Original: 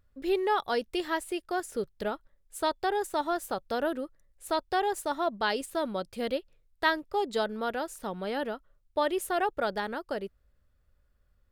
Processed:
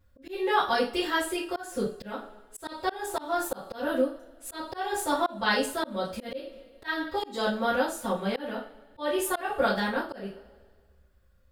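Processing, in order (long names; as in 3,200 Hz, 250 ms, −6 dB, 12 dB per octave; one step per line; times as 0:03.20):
coupled-rooms reverb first 0.32 s, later 1.6 s, from −25 dB, DRR −9.5 dB
volume swells 250 ms
level −4 dB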